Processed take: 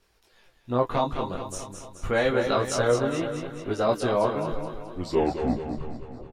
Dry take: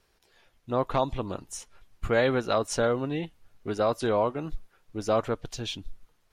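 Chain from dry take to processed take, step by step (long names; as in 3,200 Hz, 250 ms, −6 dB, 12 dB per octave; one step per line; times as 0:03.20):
turntable brake at the end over 1.58 s
repeating echo 214 ms, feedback 56%, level −7.5 dB
micro pitch shift up and down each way 10 cents
level +5 dB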